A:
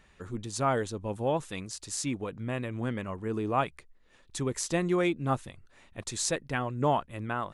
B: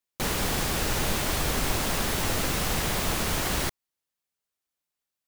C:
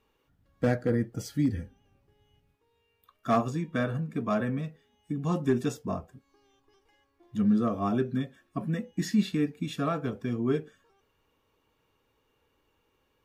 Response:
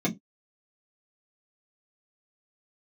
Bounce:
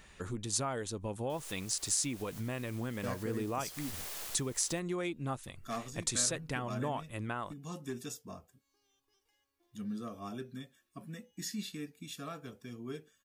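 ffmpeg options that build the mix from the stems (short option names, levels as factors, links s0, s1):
-filter_complex "[0:a]acompressor=threshold=0.0126:ratio=4,volume=1.33,asplit=2[s0][s1];[1:a]highpass=f=380:w=0.5412,highpass=f=380:w=1.3066,acrusher=bits=3:dc=4:mix=0:aa=0.000001,adelay=1100,volume=0.188[s2];[2:a]highshelf=f=2500:g=10.5,adelay=2400,volume=0.168[s3];[s1]apad=whole_len=281213[s4];[s2][s4]sidechaincompress=threshold=0.00355:ratio=8:attack=7.8:release=184[s5];[s0][s5][s3]amix=inputs=3:normalize=0,highshelf=f=4200:g=8.5"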